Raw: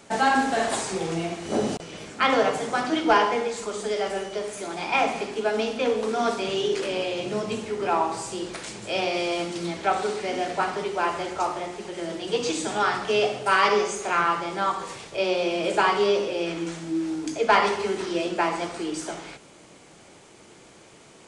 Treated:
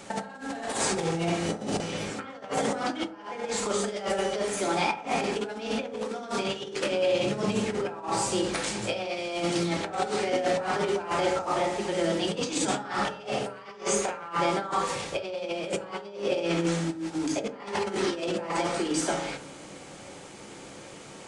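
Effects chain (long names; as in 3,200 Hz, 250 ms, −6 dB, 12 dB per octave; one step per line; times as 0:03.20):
compressor whose output falls as the input rises −30 dBFS, ratio −0.5
convolution reverb RT60 0.60 s, pre-delay 3 ms, DRR 6 dB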